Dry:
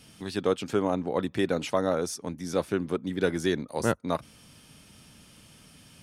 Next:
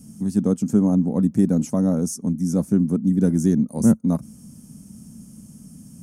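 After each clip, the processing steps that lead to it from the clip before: FFT filter 110 Hz 0 dB, 220 Hz +12 dB, 360 Hz -7 dB, 770 Hz -11 dB, 2.6 kHz -24 dB, 3.8 kHz -25 dB, 6.4 kHz 0 dB; trim +7 dB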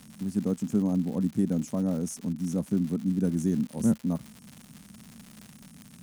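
crackle 200 per s -28 dBFS; trim -8 dB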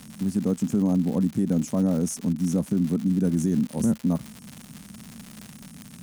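peak limiter -20.5 dBFS, peak gain reduction 6 dB; trim +6 dB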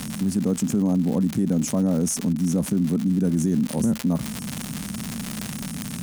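level flattener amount 50%

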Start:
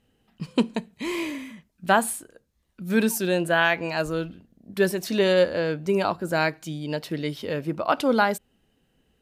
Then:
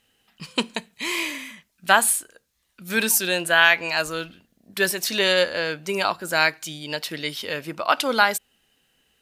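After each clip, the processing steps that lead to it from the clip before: tilt shelf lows -9 dB, about 800 Hz; trim +1 dB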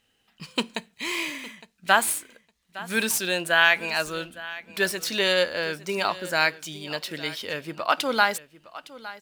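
median filter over 3 samples; feedback delay 861 ms, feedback 15%, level -17.5 dB; trim -2.5 dB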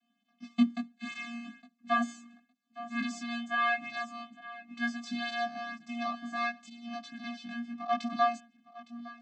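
vocoder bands 16, square 236 Hz; chorus 0.72 Hz, delay 18.5 ms, depth 2.1 ms; trim -3.5 dB

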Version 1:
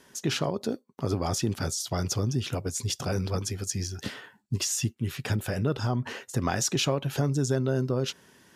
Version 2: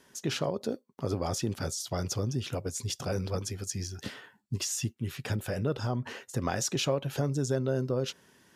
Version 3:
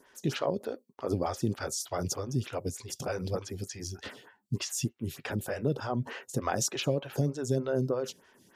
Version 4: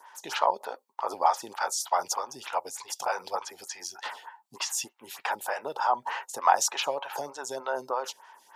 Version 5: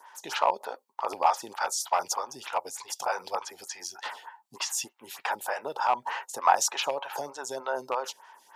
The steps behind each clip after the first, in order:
dynamic bell 530 Hz, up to +5 dB, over -43 dBFS, Q 3.1; trim -4 dB
lamp-driven phase shifter 3.3 Hz; trim +3 dB
resonant high-pass 890 Hz, resonance Q 6.1; trim +3.5 dB
rattle on loud lows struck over -43 dBFS, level -26 dBFS

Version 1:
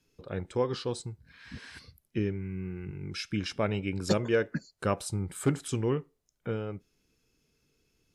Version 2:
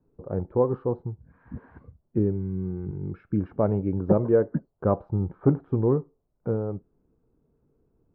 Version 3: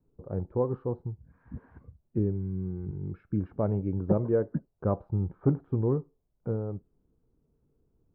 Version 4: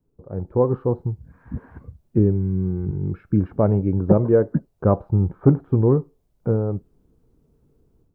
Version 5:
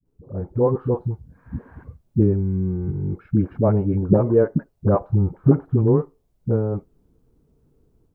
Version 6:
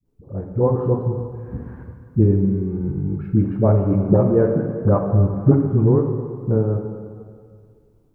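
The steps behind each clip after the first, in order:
low-pass 1 kHz 24 dB/octave; trim +6.5 dB
bass shelf 160 Hz +6.5 dB; trim -6.5 dB
level rider gain up to 10.5 dB
phase dispersion highs, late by 56 ms, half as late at 440 Hz
plate-style reverb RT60 2 s, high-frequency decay 0.95×, DRR 3 dB

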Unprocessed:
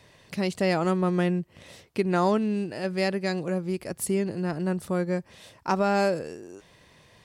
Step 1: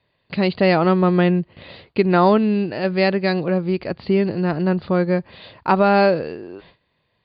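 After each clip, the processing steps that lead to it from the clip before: gate with hold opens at -43 dBFS; Chebyshev low-pass 4.7 kHz, order 8; trim +9 dB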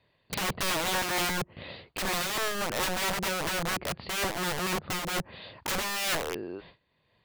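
low-pass that closes with the level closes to 510 Hz, closed at -14 dBFS; integer overflow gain 22 dB; random flutter of the level, depth 60%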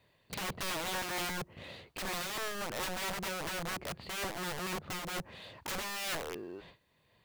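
companding laws mixed up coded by mu; trim -8.5 dB

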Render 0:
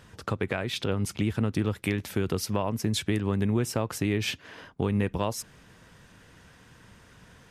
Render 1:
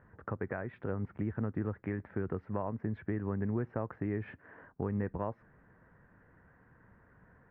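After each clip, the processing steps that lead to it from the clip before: Chebyshev low-pass 1.8 kHz, order 4; trim -7 dB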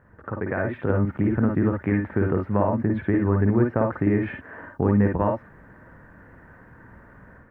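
level rider gain up to 8 dB; on a send at -2 dB: reverberation, pre-delay 49 ms; on the sum: trim +4 dB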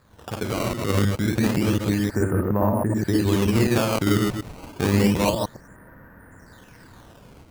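chunks repeated in reverse 105 ms, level -1 dB; decimation with a swept rate 15×, swing 160% 0.29 Hz; trim -1.5 dB

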